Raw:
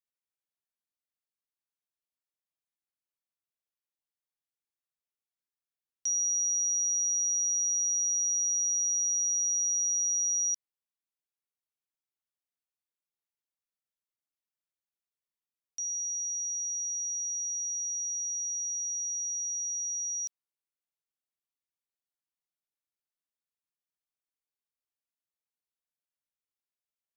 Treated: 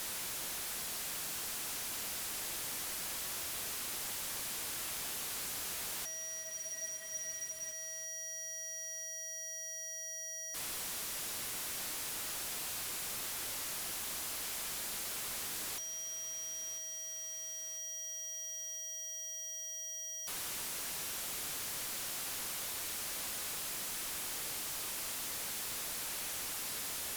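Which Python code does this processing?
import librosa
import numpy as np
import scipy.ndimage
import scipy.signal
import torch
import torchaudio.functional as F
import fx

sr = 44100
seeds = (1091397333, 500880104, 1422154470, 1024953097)

y = fx.delta_mod(x, sr, bps=64000, step_db=-42.0)
y = fx.over_compress(y, sr, threshold_db=-45.0, ratio=-0.5)
y = fx.leveller(y, sr, passes=5)
y = fx.echo_feedback(y, sr, ms=998, feedback_pct=49, wet_db=-14.0)
y = fx.spec_freeze(y, sr, seeds[0], at_s=6.46, hold_s=1.26)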